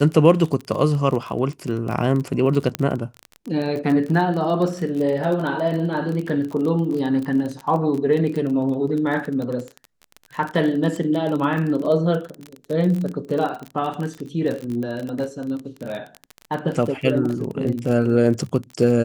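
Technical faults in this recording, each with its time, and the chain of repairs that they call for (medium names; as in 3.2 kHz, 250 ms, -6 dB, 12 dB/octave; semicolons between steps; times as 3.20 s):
crackle 27 per s -25 dBFS
2.75 s: pop -7 dBFS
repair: de-click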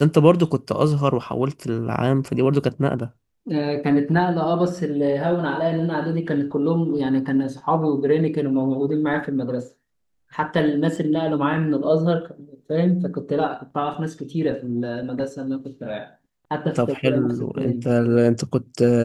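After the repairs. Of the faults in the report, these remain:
nothing left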